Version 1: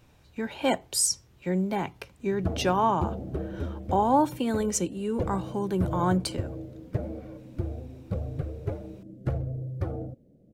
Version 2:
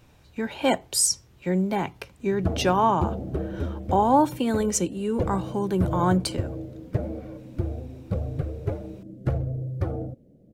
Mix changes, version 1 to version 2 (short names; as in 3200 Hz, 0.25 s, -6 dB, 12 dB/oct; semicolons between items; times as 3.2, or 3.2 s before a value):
speech +3.0 dB; background +3.5 dB